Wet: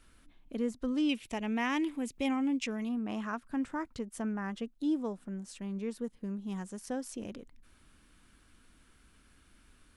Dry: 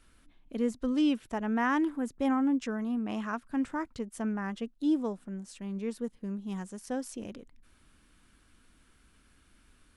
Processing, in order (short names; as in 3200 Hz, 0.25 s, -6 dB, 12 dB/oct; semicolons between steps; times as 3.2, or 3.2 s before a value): 1.09–2.89 resonant high shelf 1900 Hz +6.5 dB, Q 3; in parallel at 0 dB: compressor, threshold -37 dBFS, peak gain reduction 13.5 dB; on the sum: gain -5.5 dB